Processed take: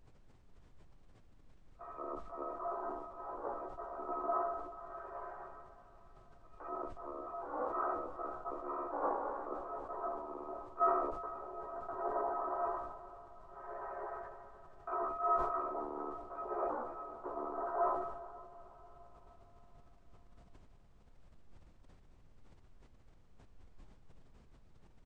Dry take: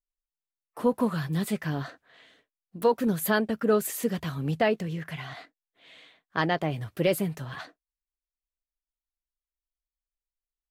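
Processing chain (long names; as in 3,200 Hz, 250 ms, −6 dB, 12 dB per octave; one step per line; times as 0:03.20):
samples in bit-reversed order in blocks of 256 samples
comb filter 6.5 ms, depth 89%
reversed playback
downward compressor 4 to 1, threshold −38 dBFS, peak gain reduction 20.5 dB
reversed playback
treble cut that deepens with the level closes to 2,300 Hz, closed at −37.5 dBFS
single-sideband voice off tune +230 Hz 510–2,700 Hz
background noise brown −76 dBFS
wrong playback speed 78 rpm record played at 33 rpm
on a send: feedback delay with all-pass diffusion 458 ms, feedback 47%, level −15 dB
on the sum: level that may fall only so fast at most 48 dB per second
level +17 dB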